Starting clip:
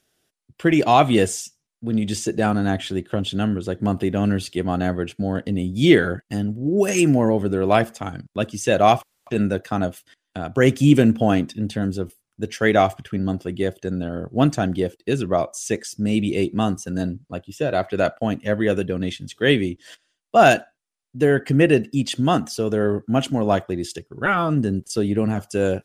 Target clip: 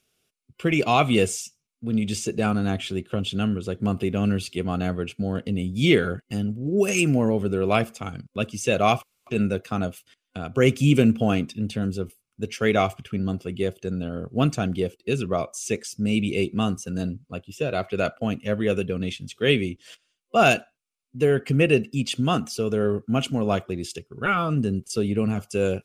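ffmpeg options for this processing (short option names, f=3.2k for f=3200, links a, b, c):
-af "superequalizer=6b=0.562:8b=0.631:9b=0.562:11b=0.501:12b=1.58,volume=-2dB"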